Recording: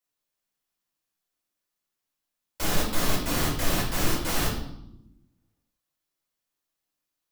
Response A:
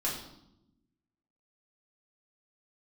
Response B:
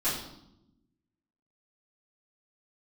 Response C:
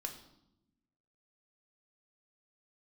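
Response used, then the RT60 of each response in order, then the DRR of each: A; 0.85, 0.85, 0.85 seconds; −6.0, −14.5, 3.0 decibels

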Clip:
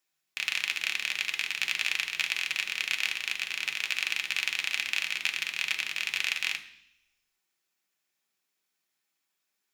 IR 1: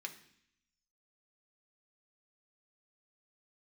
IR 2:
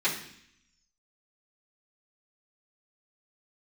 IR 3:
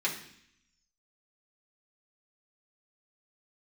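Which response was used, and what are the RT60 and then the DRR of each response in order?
1; 0.65, 0.65, 0.65 seconds; 3.0, −11.5, −5.0 decibels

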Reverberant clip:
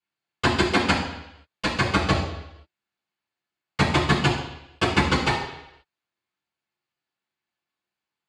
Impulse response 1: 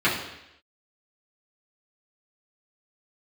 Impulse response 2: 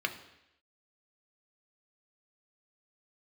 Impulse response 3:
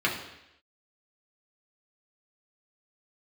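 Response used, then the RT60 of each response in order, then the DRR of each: 1; 0.85, 0.85, 0.85 seconds; −10.0, 5.0, −3.5 decibels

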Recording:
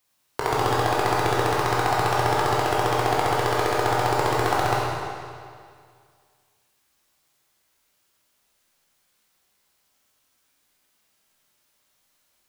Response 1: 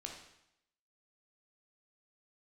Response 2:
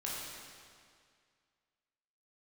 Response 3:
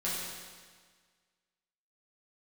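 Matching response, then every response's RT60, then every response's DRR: 2; 0.80, 2.1, 1.6 seconds; 0.5, −6.0, −8.5 decibels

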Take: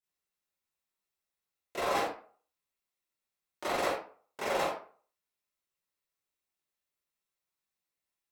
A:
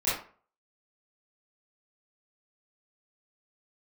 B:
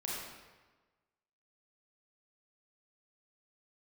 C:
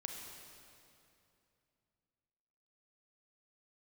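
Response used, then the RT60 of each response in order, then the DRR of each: A; 0.45, 1.3, 2.7 seconds; −12.5, −5.5, 1.5 decibels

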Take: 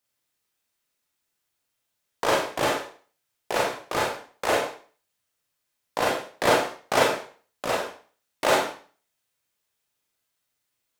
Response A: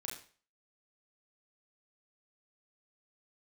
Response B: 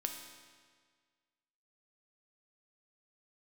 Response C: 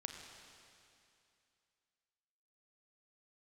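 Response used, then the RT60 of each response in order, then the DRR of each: A; 0.40, 1.7, 2.6 seconds; −2.5, 3.5, 3.0 decibels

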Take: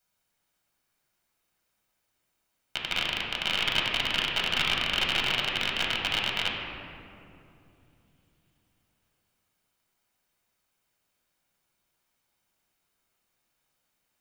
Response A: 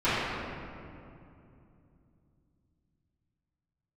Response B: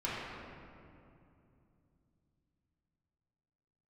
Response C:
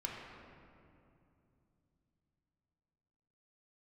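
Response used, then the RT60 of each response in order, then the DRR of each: C; 2.7, 2.7, 2.7 seconds; −18.0, −9.5, −2.5 decibels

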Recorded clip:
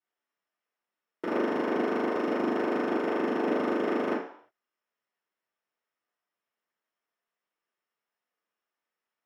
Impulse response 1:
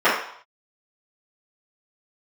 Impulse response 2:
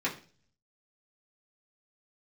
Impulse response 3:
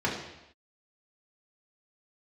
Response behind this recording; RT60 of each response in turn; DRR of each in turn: 1; non-exponential decay, 0.40 s, non-exponential decay; −15.0, −6.5, −5.0 decibels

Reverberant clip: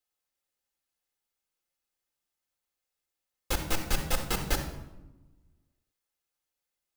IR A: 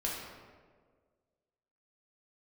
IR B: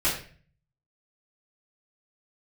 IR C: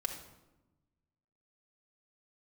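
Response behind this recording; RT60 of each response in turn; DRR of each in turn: C; 1.7, 0.45, 1.0 seconds; −4.5, −12.5, 1.5 decibels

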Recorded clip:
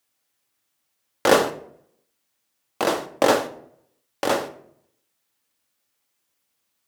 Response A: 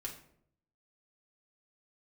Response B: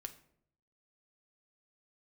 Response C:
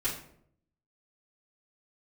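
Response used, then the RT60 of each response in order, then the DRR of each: B; 0.65, 0.70, 0.65 seconds; −2.0, 6.5, −11.0 decibels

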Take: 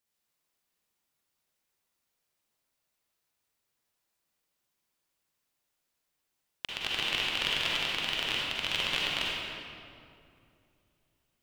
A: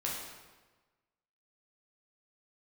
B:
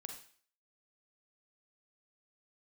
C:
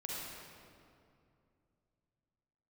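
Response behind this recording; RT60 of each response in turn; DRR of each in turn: C; 1.3, 0.45, 2.5 seconds; −4.5, 3.5, −5.0 decibels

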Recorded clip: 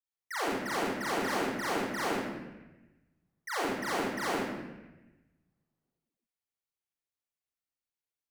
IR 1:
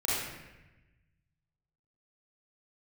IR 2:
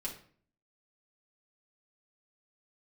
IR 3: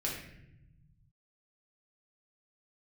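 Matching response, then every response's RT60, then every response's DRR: 1; 1.1, 0.50, 0.80 seconds; −8.5, −4.0, −5.0 decibels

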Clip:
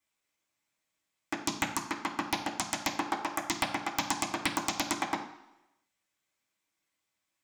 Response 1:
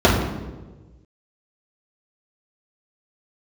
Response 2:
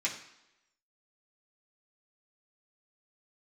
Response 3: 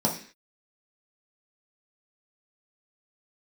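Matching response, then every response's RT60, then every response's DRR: 2; 1.2, 0.90, 0.45 seconds; −8.5, −5.5, −3.0 decibels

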